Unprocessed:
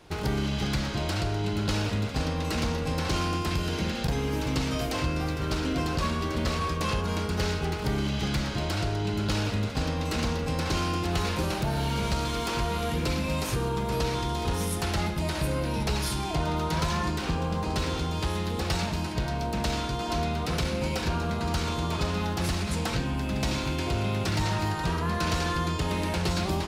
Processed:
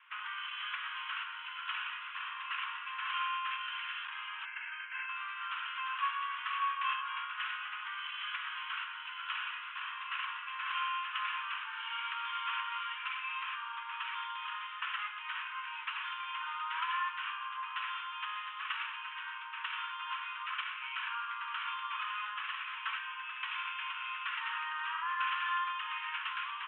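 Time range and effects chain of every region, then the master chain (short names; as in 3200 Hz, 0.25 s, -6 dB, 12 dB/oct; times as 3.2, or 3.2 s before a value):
4.45–5.09 fixed phaser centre 740 Hz, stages 8 + comb 1.9 ms, depth 51%
whole clip: steep high-pass 1000 Hz 96 dB/oct; dynamic EQ 2100 Hz, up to -5 dB, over -56 dBFS, Q 7.6; steep low-pass 3200 Hz 96 dB/oct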